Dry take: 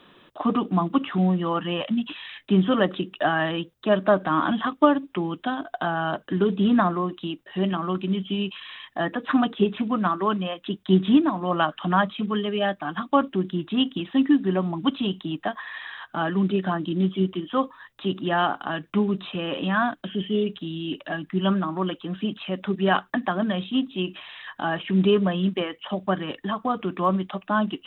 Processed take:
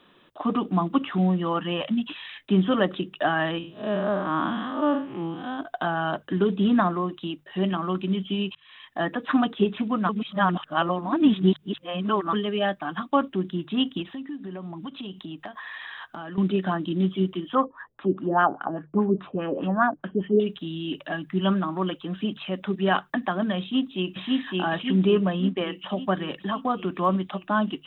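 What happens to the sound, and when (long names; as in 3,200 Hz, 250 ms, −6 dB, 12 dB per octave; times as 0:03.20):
0:03.58–0:05.59: spectrum smeared in time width 155 ms
0:08.55–0:09.01: fade in
0:10.09–0:12.33: reverse
0:14.02–0:16.38: downward compressor 5 to 1, threshold −33 dBFS
0:17.55–0:20.40: auto-filter low-pass sine 4.9 Hz 380–1,700 Hz
0:23.60–0:24.18: delay throw 560 ms, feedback 60%, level −0.5 dB
0:24.96–0:25.61: high-frequency loss of the air 170 metres
whole clip: mains-hum notches 50/100/150 Hz; automatic gain control gain up to 4 dB; level −4.5 dB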